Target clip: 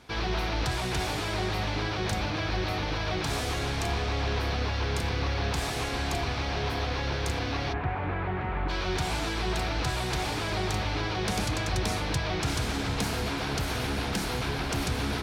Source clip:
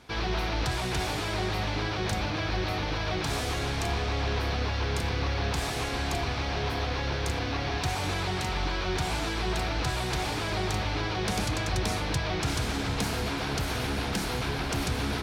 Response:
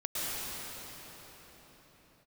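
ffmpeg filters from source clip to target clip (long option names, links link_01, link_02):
-filter_complex "[0:a]asplit=3[link_01][link_02][link_03];[link_01]afade=type=out:start_time=7.72:duration=0.02[link_04];[link_02]lowpass=frequency=2100:width=0.5412,lowpass=frequency=2100:width=1.3066,afade=type=in:start_time=7.72:duration=0.02,afade=type=out:start_time=8.68:duration=0.02[link_05];[link_03]afade=type=in:start_time=8.68:duration=0.02[link_06];[link_04][link_05][link_06]amix=inputs=3:normalize=0"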